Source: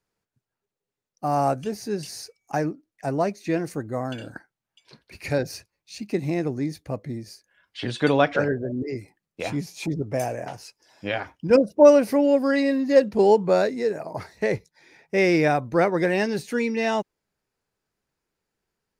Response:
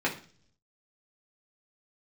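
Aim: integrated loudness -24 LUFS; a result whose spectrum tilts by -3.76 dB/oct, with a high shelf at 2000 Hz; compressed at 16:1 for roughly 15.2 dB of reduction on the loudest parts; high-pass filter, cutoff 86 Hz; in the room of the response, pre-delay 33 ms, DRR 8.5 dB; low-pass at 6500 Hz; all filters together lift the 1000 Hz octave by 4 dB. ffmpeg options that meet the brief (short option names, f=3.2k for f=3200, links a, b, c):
-filter_complex "[0:a]highpass=86,lowpass=6.5k,equalizer=f=1k:t=o:g=6.5,highshelf=f=2k:g=-3.5,acompressor=threshold=-22dB:ratio=16,asplit=2[a][b];[1:a]atrim=start_sample=2205,adelay=33[c];[b][c]afir=irnorm=-1:irlink=0,volume=-19dB[d];[a][d]amix=inputs=2:normalize=0,volume=4.5dB"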